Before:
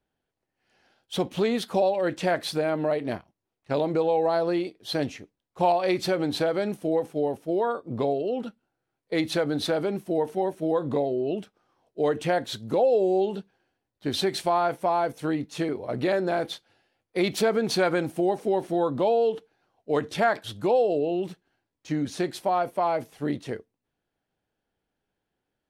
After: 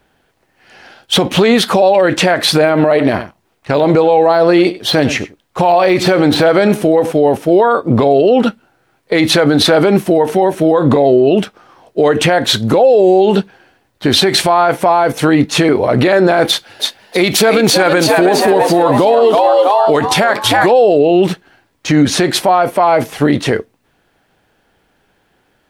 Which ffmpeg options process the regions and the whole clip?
-filter_complex "[0:a]asettb=1/sr,asplit=3[a][b][c];[a]atrim=end=2.594[d];[b]atrim=start=2.59:end=7.12,asetpts=PTS-STARTPTS,afade=t=in:d=0.004:c=qsin,afade=t=out:st=4.526:d=0.004:c=qsin,deesser=0.95,aecho=1:1:96:0.106,atrim=end_sample=199773[e];[c]atrim=start=7.116[f];[d][e]acrossfade=d=0.004:c1=hsin:c2=qsin[g];[g][f]acrossfade=d=0.004:c1=qsin:c2=hsin,asettb=1/sr,asplit=3[h][i][j];[h]atrim=end=16.474[k];[i]atrim=start=16.47:end=20.72,asetpts=PTS-STARTPTS,afade=t=in:d=0.004:c=qsin,afade=t=out:st=4.246:d=0.004:c=qsin,highshelf=f=6.2k:g=7.5,asplit=6[l][m][n][o][p][q];[m]adelay=325,afreqshift=100,volume=-6.5dB[r];[n]adelay=650,afreqshift=200,volume=-13.2dB[s];[o]adelay=975,afreqshift=300,volume=-20dB[t];[p]adelay=1300,afreqshift=400,volume=-26.7dB[u];[q]adelay=1625,afreqshift=500,volume=-33.5dB[v];[l][r][s][t][u][v]amix=inputs=6:normalize=0,atrim=end_sample=187425[w];[j]atrim=start=20.716[x];[k][w]acrossfade=d=0.004:c1=hsin:c2=qsin[y];[y][x]acrossfade=d=0.004:c1=qsin:c2=hsin,equalizer=f=1.6k:w=0.54:g=5,acompressor=threshold=-23dB:ratio=6,alimiter=level_in=23dB:limit=-1dB:release=50:level=0:latency=1,volume=-1dB"

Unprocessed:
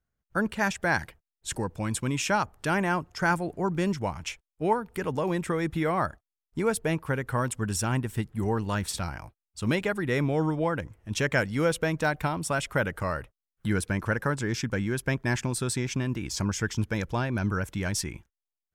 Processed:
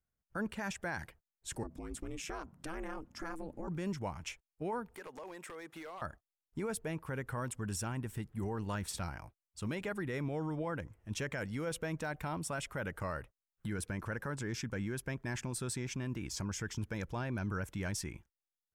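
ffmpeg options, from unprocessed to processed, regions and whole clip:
-filter_complex "[0:a]asettb=1/sr,asplit=3[a][b][c];[a]atrim=end=1.634[d];[b]atrim=start=1.63:end=3.68,asetpts=PTS-STARTPTS,afade=t=in:d=0.004:c=qsin,afade=t=out:st=2.046:d=0.004:c=qsin,bass=f=250:g=7,treble=f=4k:g=1,acompressor=threshold=-28dB:ratio=6:attack=3.2:release=140:knee=1:detection=peak,aeval=exprs='val(0)*sin(2*PI*160*n/s)':c=same[e];[c]atrim=start=3.676[f];[d][e]acrossfade=d=0.004:c1=hsin:c2=qsin[g];[g][f]acrossfade=d=0.004:c1=qsin:c2=hsin,asettb=1/sr,asplit=3[h][i][j];[h]atrim=end=4.954[k];[i]atrim=start=4.95:end=6.02,asetpts=PTS-STARTPTS,afade=t=in:d=0.004:c=qsin,afade=t=out:st=1.066:d=0.004:c=qsin,highpass=460,acompressor=threshold=-35dB:ratio=6:attack=3.2:release=140:knee=1:detection=peak,aeval=exprs='0.0237*(abs(mod(val(0)/0.0237+3,4)-2)-1)':c=same[l];[j]atrim=start=6.016[m];[k][l]acrossfade=d=0.004:c1=hsin:c2=qsin[n];[n][m]acrossfade=d=0.004:c1=qsin:c2=hsin,equalizer=f=3.9k:w=1.5:g=-2.5,alimiter=limit=-22dB:level=0:latency=1:release=33,volume=-7dB"

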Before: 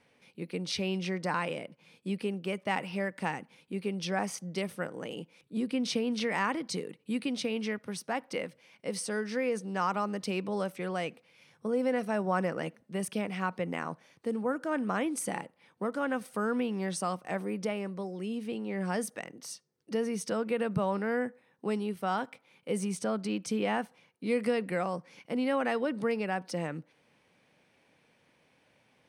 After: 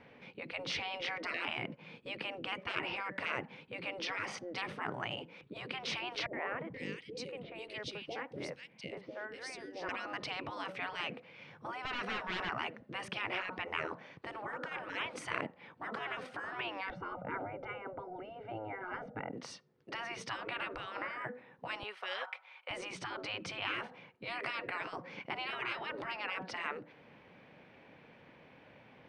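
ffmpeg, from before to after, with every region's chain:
-filter_complex "[0:a]asettb=1/sr,asplit=3[a][b][c];[a]atrim=end=6.264[d];[b]atrim=start=6.26:end=9.89,asetpts=PTS-STARTPTS,afade=t=in:d=0.004:c=qsin,afade=t=out:st=3.626:d=0.004:c=qsin,equalizer=f=1.3k:t=o:w=2.5:g=-14,acrossover=split=530|2300[e][f][g];[f]adelay=70[h];[g]adelay=480[i];[e][h][i]amix=inputs=3:normalize=0,atrim=end_sample=160083[j];[c]atrim=start=9.886[k];[d][j]acrossfade=d=0.004:c1=hsin:c2=qsin[l];[l][k]acrossfade=d=0.004:c1=qsin:c2=hsin,asettb=1/sr,asplit=3[m][n][o];[m]atrim=end=11.854[p];[n]atrim=start=11.85:end=12.49,asetpts=PTS-STARTPTS,afade=t=in:d=0.004:c=qsin,afade=t=out:st=0.636:d=0.004:c=qsin,highpass=370,equalizer=f=3.1k:w=0.32:g=4.5,asoftclip=type=hard:threshold=-32dB[q];[o]atrim=start=12.486[r];[p][q]acrossfade=d=0.004:c1=hsin:c2=qsin[s];[s][r]acrossfade=d=0.004:c1=qsin:c2=hsin,asettb=1/sr,asplit=3[t][u][v];[t]atrim=end=16.904[w];[u]atrim=start=16.9:end=19.33,asetpts=PTS-STARTPTS,afade=t=in:d=0.004:c=qsin,afade=t=out:st=2.426:d=0.004:c=qsin,lowpass=1k,lowshelf=f=160:g=6.5,aecho=1:1:1.4:0.87,atrim=end_sample=107163[x];[v]atrim=start=19.326[y];[w][x]acrossfade=d=0.004:c1=hsin:c2=qsin[z];[z][y]acrossfade=d=0.004:c1=qsin:c2=hsin,asettb=1/sr,asplit=3[aa][ab][ac];[aa]atrim=end=21.834[ad];[ab]atrim=start=21.83:end=22.71,asetpts=PTS-STARTPTS,afade=t=in:d=0.004:c=qsin,afade=t=out:st=0.876:d=0.004:c=qsin,highpass=f=780:w=0.5412,highpass=f=780:w=1.3066,aecho=1:1:5.4:0.33,atrim=end_sample=38808[ae];[ac]atrim=start=22.706[af];[ad][ae]acrossfade=d=0.004:c1=hsin:c2=qsin[ag];[ag][af]acrossfade=d=0.004:c1=qsin:c2=hsin,aemphasis=mode=reproduction:type=cd,afftfilt=real='re*lt(hypot(re,im),0.0316)':imag='im*lt(hypot(re,im),0.0316)':win_size=1024:overlap=0.75,lowpass=3.2k,volume=9.5dB"

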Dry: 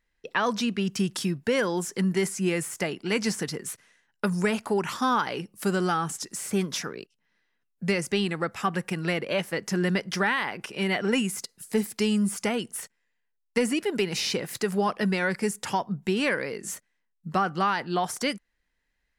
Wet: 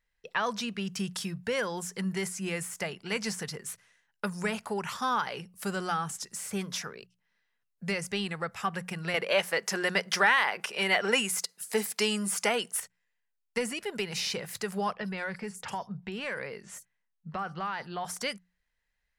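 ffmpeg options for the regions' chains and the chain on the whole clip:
-filter_complex "[0:a]asettb=1/sr,asplit=3[a][b][c];[a]atrim=end=9.144[d];[b]atrim=start=9.14:end=12.8,asetpts=PTS-STARTPTS,afade=t=in:d=0.004:c=qsin,afade=t=out:st=3.656:d=0.004:c=qsin,highpass=330,acontrast=78[e];[c]atrim=start=12.796[f];[d][e]acrossfade=d=0.004:c1=hsin:c2=qsin[g];[g][f]acrossfade=d=0.004:c1=qsin:c2=hsin,asettb=1/sr,asplit=3[h][i][j];[h]atrim=end=14.944[k];[i]atrim=start=14.94:end=18.05,asetpts=PTS-STARTPTS,afade=t=in:d=0.004:c=qsin,afade=t=out:st=3.106:d=0.004:c=qsin,highshelf=f=7k:g=-9,acrossover=split=5300[l][m];[m]adelay=50[n];[l][n]amix=inputs=2:normalize=0,atrim=end_sample=137151,acompressor=threshold=-25dB:ratio=4:attack=3.2:release=140:knee=1:detection=peak[o];[j]atrim=start=18.046[p];[k][o]acrossfade=d=0.004:c1=hsin:c2=qsin[q];[q][p]acrossfade=d=0.004:c1=qsin:c2=hsin,equalizer=f=300:t=o:w=0.66:g=-12.5,bandreject=f=60:t=h:w=6,bandreject=f=120:t=h:w=6,bandreject=f=180:t=h:w=6,volume=-3.5dB"

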